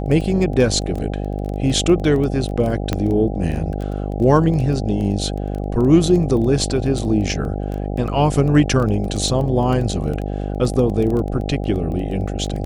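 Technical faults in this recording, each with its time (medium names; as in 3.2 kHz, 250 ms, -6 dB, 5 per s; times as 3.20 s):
buzz 50 Hz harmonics 16 -24 dBFS
crackle 12 per s -24 dBFS
2.93 s: pop -7 dBFS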